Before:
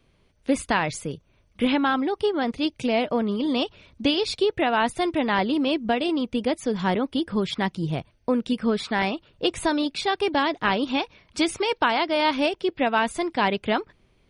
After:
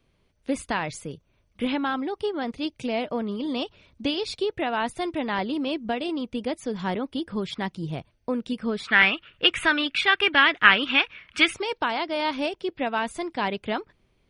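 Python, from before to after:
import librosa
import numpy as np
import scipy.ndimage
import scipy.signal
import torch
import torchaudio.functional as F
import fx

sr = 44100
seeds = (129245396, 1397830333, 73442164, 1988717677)

y = fx.band_shelf(x, sr, hz=2000.0, db=15.5, octaves=1.7, at=(8.87, 11.52), fade=0.02)
y = y * 10.0 ** (-4.5 / 20.0)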